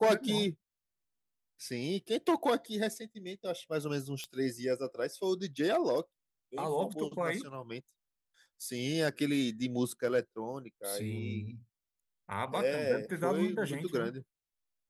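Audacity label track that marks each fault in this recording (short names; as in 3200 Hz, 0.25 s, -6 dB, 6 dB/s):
4.240000	4.240000	pop -24 dBFS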